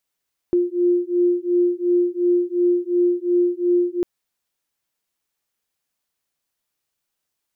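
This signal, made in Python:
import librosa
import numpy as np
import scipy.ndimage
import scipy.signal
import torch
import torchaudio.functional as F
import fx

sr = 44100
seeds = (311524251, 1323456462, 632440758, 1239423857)

y = fx.two_tone_beats(sr, length_s=3.5, hz=351.0, beat_hz=2.8, level_db=-19.0)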